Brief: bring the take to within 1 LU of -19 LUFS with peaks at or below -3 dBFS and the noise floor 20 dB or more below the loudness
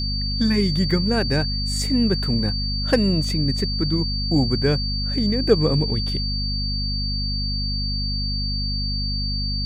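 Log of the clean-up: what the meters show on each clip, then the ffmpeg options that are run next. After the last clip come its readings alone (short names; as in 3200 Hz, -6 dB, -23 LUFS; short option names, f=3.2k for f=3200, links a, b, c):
hum 50 Hz; harmonics up to 250 Hz; hum level -23 dBFS; steady tone 4600 Hz; tone level -26 dBFS; loudness -22.0 LUFS; peak -3.0 dBFS; loudness target -19.0 LUFS
-> -af "bandreject=f=50:t=h:w=6,bandreject=f=100:t=h:w=6,bandreject=f=150:t=h:w=6,bandreject=f=200:t=h:w=6,bandreject=f=250:t=h:w=6"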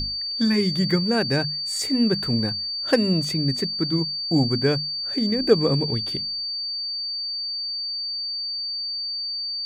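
hum none; steady tone 4600 Hz; tone level -26 dBFS
-> -af "bandreject=f=4.6k:w=30"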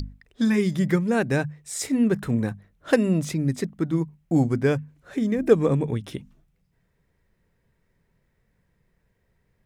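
steady tone none; loudness -24.0 LUFS; peak -4.5 dBFS; loudness target -19.0 LUFS
-> -af "volume=5dB,alimiter=limit=-3dB:level=0:latency=1"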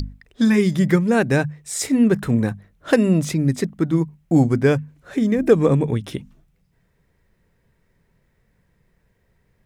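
loudness -19.5 LUFS; peak -3.0 dBFS; noise floor -65 dBFS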